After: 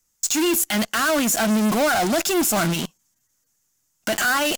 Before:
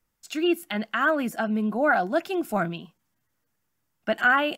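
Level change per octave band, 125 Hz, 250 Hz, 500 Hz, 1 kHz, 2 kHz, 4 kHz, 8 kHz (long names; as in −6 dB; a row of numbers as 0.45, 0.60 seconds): +7.5, +5.0, +3.0, +2.0, +1.0, +10.5, +25.0 decibels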